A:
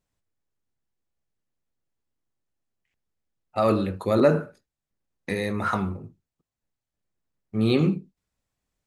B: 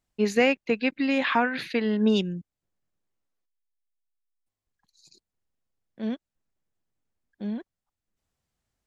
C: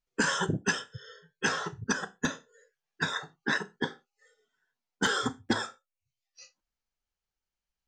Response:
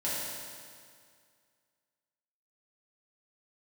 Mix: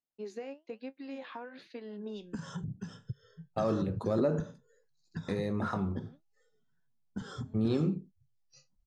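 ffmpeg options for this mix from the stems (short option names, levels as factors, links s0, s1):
-filter_complex "[0:a]agate=range=0.0355:threshold=0.00708:ratio=16:detection=peak,acompressor=threshold=0.0447:ratio=2,volume=0.794,asplit=2[s0][s1];[1:a]highpass=330,flanger=delay=7.4:depth=7.5:regen=58:speed=1.1:shape=sinusoidal,volume=0.376[s2];[2:a]lowshelf=f=250:t=q:w=1.5:g=12,alimiter=limit=0.141:level=0:latency=1:release=87,adelay=2150,volume=0.708[s3];[s1]apad=whole_len=390958[s4];[s2][s4]sidechaincompress=threshold=0.0126:ratio=8:attack=7.9:release=716[s5];[s5][s3]amix=inputs=2:normalize=0,lowshelf=f=110:g=9.5,acompressor=threshold=0.0178:ratio=16,volume=1[s6];[s0][s6]amix=inputs=2:normalize=0,lowpass=5600,equalizer=f=2200:w=0.78:g=-11"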